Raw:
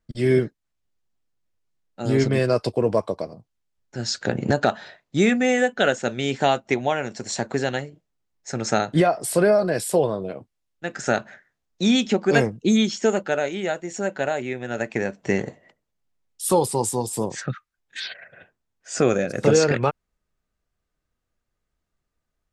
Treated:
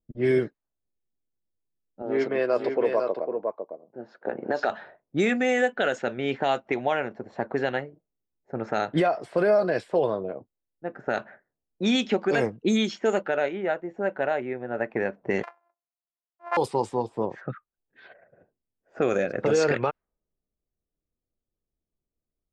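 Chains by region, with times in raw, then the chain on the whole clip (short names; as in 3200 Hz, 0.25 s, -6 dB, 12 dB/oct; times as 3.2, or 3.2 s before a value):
2.02–4.7 HPF 330 Hz + high shelf 2600 Hz -5.5 dB + echo 0.504 s -6 dB
15.43–16.57 sample sorter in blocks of 128 samples + HPF 740 Hz 24 dB/oct + bell 3400 Hz -9 dB 0.59 oct
whole clip: low-pass opened by the level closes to 380 Hz, open at -14.5 dBFS; tone controls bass -8 dB, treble -7 dB; limiter -13.5 dBFS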